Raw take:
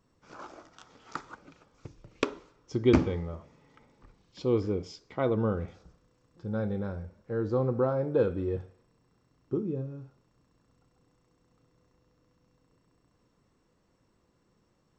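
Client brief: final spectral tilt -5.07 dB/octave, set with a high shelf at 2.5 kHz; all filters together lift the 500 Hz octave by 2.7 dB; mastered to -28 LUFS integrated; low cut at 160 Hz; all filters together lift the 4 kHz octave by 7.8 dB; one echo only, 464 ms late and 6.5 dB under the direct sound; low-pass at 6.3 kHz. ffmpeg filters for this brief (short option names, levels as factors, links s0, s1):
-af "highpass=160,lowpass=6300,equalizer=f=500:t=o:g=3,highshelf=f=2500:g=6.5,equalizer=f=4000:t=o:g=5,aecho=1:1:464:0.473,volume=1.19"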